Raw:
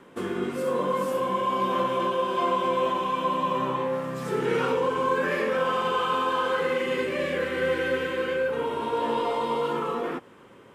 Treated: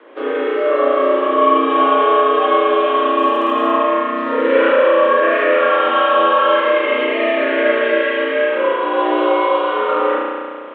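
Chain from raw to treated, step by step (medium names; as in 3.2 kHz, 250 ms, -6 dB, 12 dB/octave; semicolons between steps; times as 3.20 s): mistuned SSB +75 Hz 190–3400 Hz; spring tank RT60 2 s, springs 33 ms, chirp 55 ms, DRR -5.5 dB; 3.18–3.76 s: crackle 130 per s -43 dBFS; trim +5.5 dB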